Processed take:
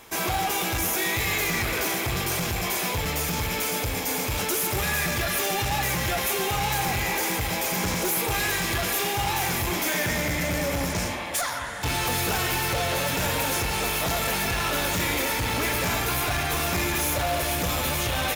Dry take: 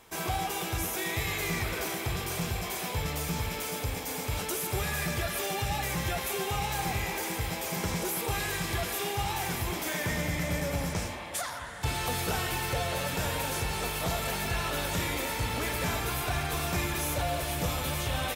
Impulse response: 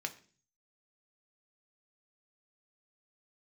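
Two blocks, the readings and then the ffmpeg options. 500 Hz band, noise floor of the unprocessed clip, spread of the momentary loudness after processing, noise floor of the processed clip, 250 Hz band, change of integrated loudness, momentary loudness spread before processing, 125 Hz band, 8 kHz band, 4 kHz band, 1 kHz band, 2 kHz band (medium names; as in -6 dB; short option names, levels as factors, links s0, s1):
+5.0 dB, -36 dBFS, 2 LU, -29 dBFS, +5.0 dB, +6.5 dB, 3 LU, +3.0 dB, +7.0 dB, +6.5 dB, +6.0 dB, +7.0 dB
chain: -filter_complex "[0:a]asoftclip=type=hard:threshold=0.0335,asplit=2[s0][s1];[1:a]atrim=start_sample=2205,highshelf=f=9200:g=10[s2];[s1][s2]afir=irnorm=-1:irlink=0,volume=0.631[s3];[s0][s3]amix=inputs=2:normalize=0,volume=1.58"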